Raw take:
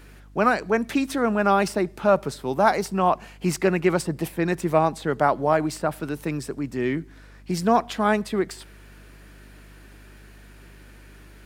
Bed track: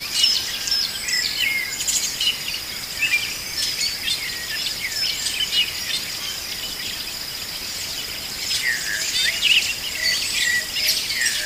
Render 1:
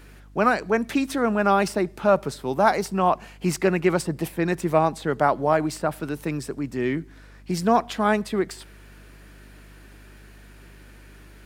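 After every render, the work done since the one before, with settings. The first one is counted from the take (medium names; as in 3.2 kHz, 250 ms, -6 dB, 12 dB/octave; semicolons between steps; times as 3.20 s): no audible change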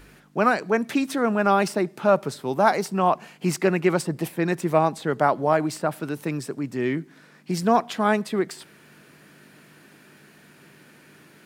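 de-hum 50 Hz, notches 2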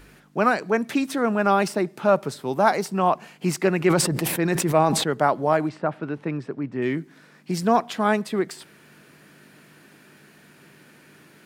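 3.77–5.04 s: decay stretcher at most 39 dB/s; 5.69–6.82 s: low-pass 2.4 kHz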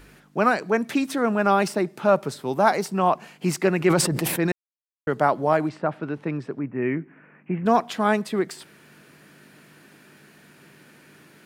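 4.52–5.07 s: mute; 6.59–7.66 s: steep low-pass 2.7 kHz 72 dB/octave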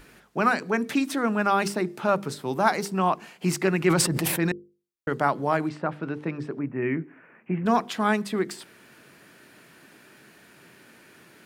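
dynamic bell 590 Hz, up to -6 dB, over -32 dBFS, Q 1.4; hum notches 50/100/150/200/250/300/350/400/450/500 Hz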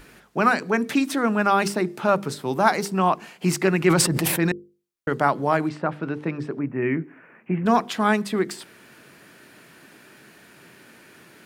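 trim +3 dB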